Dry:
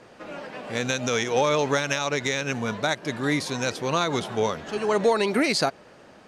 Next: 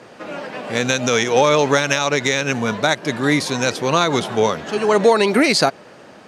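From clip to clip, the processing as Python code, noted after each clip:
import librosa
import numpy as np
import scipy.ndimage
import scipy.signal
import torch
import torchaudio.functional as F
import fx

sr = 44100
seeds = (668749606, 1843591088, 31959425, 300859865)

y = scipy.signal.sosfilt(scipy.signal.butter(2, 100.0, 'highpass', fs=sr, output='sos'), x)
y = y * 10.0 ** (7.5 / 20.0)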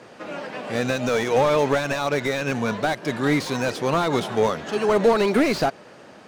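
y = fx.slew_limit(x, sr, full_power_hz=190.0)
y = y * 10.0 ** (-3.0 / 20.0)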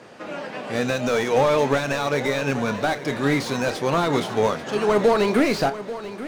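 y = fx.doubler(x, sr, ms=29.0, db=-12.0)
y = fx.echo_feedback(y, sr, ms=838, feedback_pct=29, wet_db=-14.0)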